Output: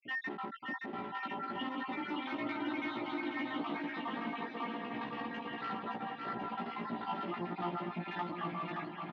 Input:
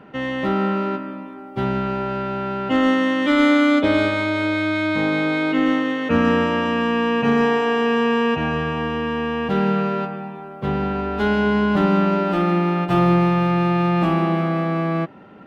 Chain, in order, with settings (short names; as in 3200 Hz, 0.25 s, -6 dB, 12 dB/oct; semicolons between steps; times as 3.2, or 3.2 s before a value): random spectral dropouts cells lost 68%; bell 700 Hz -3.5 dB 1.5 oct; compressor 6:1, threshold -33 dBFS, peak gain reduction 17 dB; hard clip -36 dBFS, distortion -8 dB; granular stretch 0.59×, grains 33 ms; speaker cabinet 240–3400 Hz, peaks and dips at 280 Hz +4 dB, 480 Hz -9 dB, 860 Hz +4 dB, 1500 Hz -8 dB, 2500 Hz -4 dB; doubler 17 ms -3 dB; on a send: bouncing-ball echo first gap 0.57 s, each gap 0.85×, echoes 5; on the sum: gain +1 dB